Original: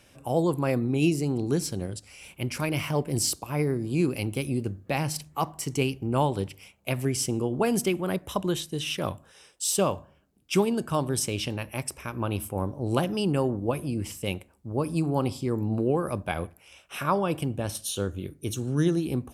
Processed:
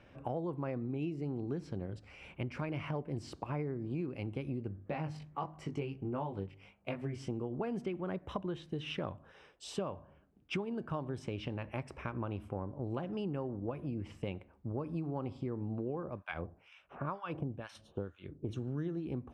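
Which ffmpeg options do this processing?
-filter_complex "[0:a]asplit=3[a][b][c];[a]afade=t=out:st=4.81:d=0.02[d];[b]flanger=delay=19:depth=2.4:speed=1.6,afade=t=in:st=4.81:d=0.02,afade=t=out:st=7.29:d=0.02[e];[c]afade=t=in:st=7.29:d=0.02[f];[d][e][f]amix=inputs=3:normalize=0,asettb=1/sr,asplit=3[g][h][i];[g]atrim=end=16.034[j];[h]atrim=start=16.03:end=18.49,asetpts=PTS-STARTPTS,afade=t=in:d=0.004:c=qsin,afade=t=out:st=2.456:d=0.004:c=qsin,acrossover=split=1100[k][l];[k]aeval=exprs='val(0)*(1-1/2+1/2*cos(2*PI*2.1*n/s))':c=same[m];[l]aeval=exprs='val(0)*(1-1/2-1/2*cos(2*PI*2.1*n/s))':c=same[n];[m][n]amix=inputs=2:normalize=0[o];[i]atrim=start=18.486[p];[j][o]acrossfade=d=0.004:c1=hsin:c2=qsin[q];[q][p]acrossfade=d=0.004:c1=qsin:c2=hsin,lowpass=2k,acompressor=threshold=-35dB:ratio=6"

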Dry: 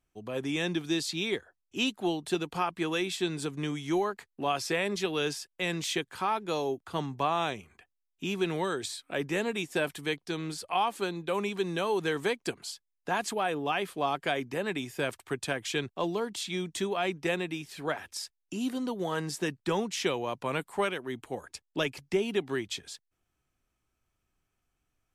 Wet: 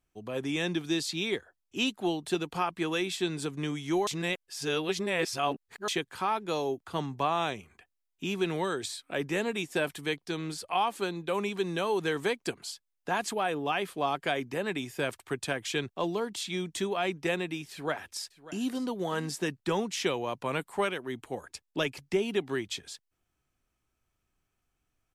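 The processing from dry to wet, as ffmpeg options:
-filter_complex "[0:a]asplit=2[a][b];[b]afade=t=in:st=17.71:d=0.01,afade=t=out:st=18.73:d=0.01,aecho=0:1:590|1180:0.141254|0.0211881[c];[a][c]amix=inputs=2:normalize=0,asplit=3[d][e][f];[d]atrim=end=4.072[g];[e]atrim=start=4.068:end=5.882,asetpts=PTS-STARTPTS,areverse[h];[f]atrim=start=5.878[i];[g][h]acrossfade=d=0.004:c1=hsin:c2=hsin[j];[j][i]acrossfade=d=0.004:c1=hsin:c2=hsin"

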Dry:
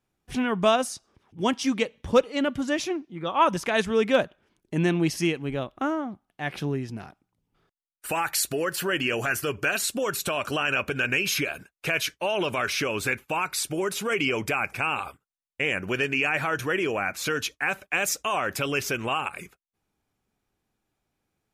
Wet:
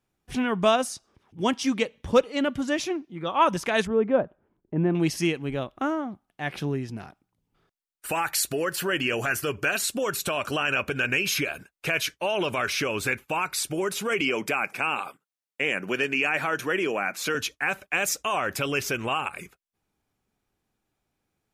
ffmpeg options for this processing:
-filter_complex "[0:a]asettb=1/sr,asplit=3[a][b][c];[a]atrim=end=3.874[d];[b]atrim=start=3.87:end=4.95,asetpts=PTS-STARTPTS,afade=t=in:d=0.004:c=qsin,afade=t=out:st=1.076:d=0.004:c=qsin,lowpass=1k[e];[c]atrim=start=4.946[f];[d][e]acrossfade=d=0.004:c1=hsin:c2=qsin[g];[g][f]acrossfade=d=0.004:c1=qsin:c2=hsin,asettb=1/sr,asplit=3[h][i][j];[h]atrim=end=14.214[k];[i]atrim=start=14.21:end=17.35,asetpts=PTS-STARTPTS,afade=t=in:d=0.004:c=qsin,afade=t=out:st=3.136:d=0.004:c=qsin,highpass=f=160:w=0.5412,highpass=f=160:w=1.3066[l];[j]atrim=start=17.346[m];[k][l]acrossfade=d=0.004:c1=hsin:c2=qsin[n];[n][m]acrossfade=d=0.004:c1=qsin:c2=hsin"

